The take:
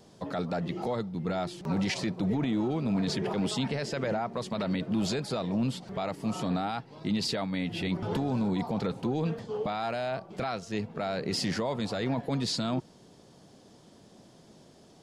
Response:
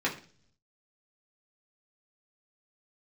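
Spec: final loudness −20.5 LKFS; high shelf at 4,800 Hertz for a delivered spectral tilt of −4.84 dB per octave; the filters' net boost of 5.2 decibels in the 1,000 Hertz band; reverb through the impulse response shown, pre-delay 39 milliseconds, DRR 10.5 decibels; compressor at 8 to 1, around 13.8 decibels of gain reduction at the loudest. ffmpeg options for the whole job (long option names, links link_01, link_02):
-filter_complex "[0:a]equalizer=frequency=1000:width_type=o:gain=7,highshelf=frequency=4800:gain=8,acompressor=threshold=-39dB:ratio=8,asplit=2[link_01][link_02];[1:a]atrim=start_sample=2205,adelay=39[link_03];[link_02][link_03]afir=irnorm=-1:irlink=0,volume=-20dB[link_04];[link_01][link_04]amix=inputs=2:normalize=0,volume=21.5dB"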